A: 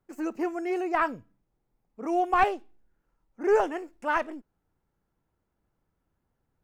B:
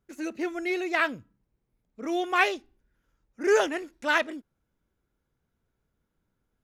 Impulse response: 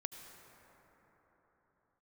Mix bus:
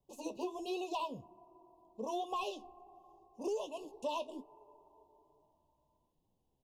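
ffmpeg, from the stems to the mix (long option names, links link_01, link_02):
-filter_complex "[0:a]bass=frequency=250:gain=-13,treble=frequency=4000:gain=-14,alimiter=limit=-17dB:level=0:latency=1:release=295,volume=-3.5dB,asplit=2[link_01][link_02];[link_02]volume=-15.5dB[link_03];[1:a]flanger=delay=6.4:depth=8.5:regen=45:speed=1.3:shape=sinusoidal,volume=-1,adelay=2.2,volume=0dB[link_04];[2:a]atrim=start_sample=2205[link_05];[link_03][link_05]afir=irnorm=-1:irlink=0[link_06];[link_01][link_04][link_06]amix=inputs=3:normalize=0,asuperstop=centerf=1700:order=20:qfactor=1.1,acompressor=threshold=-34dB:ratio=16"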